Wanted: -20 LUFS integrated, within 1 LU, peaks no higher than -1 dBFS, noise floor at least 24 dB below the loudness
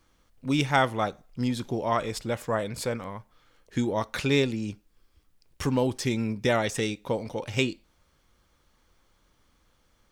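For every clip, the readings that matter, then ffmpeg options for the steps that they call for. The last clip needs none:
loudness -28.0 LUFS; peak -7.5 dBFS; loudness target -20.0 LUFS
-> -af "volume=8dB,alimiter=limit=-1dB:level=0:latency=1"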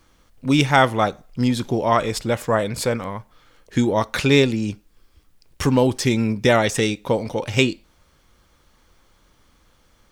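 loudness -20.5 LUFS; peak -1.0 dBFS; noise floor -59 dBFS

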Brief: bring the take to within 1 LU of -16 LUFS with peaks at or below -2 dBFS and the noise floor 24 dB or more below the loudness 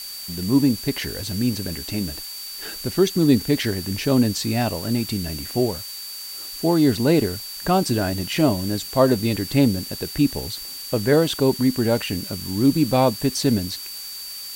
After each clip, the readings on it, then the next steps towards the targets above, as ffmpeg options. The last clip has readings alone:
steady tone 4600 Hz; tone level -34 dBFS; noise floor -35 dBFS; noise floor target -46 dBFS; loudness -22.0 LUFS; peak -4.0 dBFS; loudness target -16.0 LUFS
-> -af "bandreject=f=4.6k:w=30"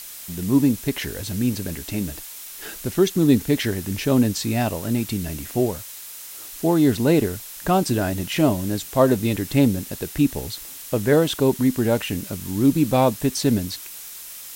steady tone none; noise floor -38 dBFS; noise floor target -46 dBFS
-> -af "afftdn=nr=8:nf=-38"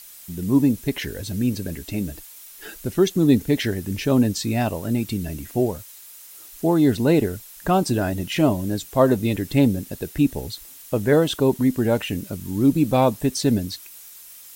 noise floor -44 dBFS; noise floor target -46 dBFS
-> -af "afftdn=nr=6:nf=-44"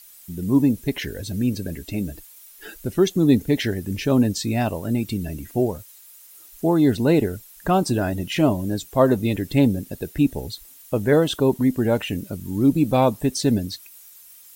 noise floor -47 dBFS; loudness -22.0 LUFS; peak -4.5 dBFS; loudness target -16.0 LUFS
-> -af "volume=6dB,alimiter=limit=-2dB:level=0:latency=1"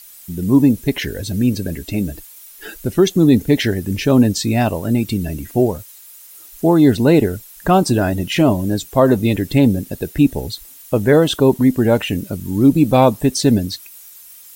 loudness -16.0 LUFS; peak -2.0 dBFS; noise floor -41 dBFS

